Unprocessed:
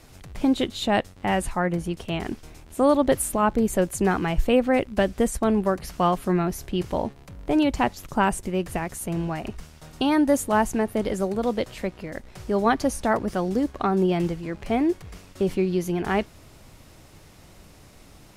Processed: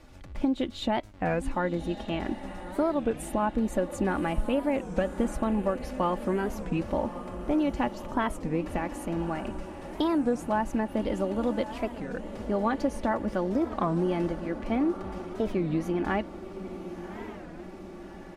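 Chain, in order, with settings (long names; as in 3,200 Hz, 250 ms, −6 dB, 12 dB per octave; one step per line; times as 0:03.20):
low-pass filter 2,400 Hz 6 dB per octave
comb filter 3.5 ms, depth 49%
downward compressor, threshold −20 dBFS, peak gain reduction 10 dB
feedback delay with all-pass diffusion 1,149 ms, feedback 56%, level −11.5 dB
wow of a warped record 33 1/3 rpm, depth 250 cents
level −2.5 dB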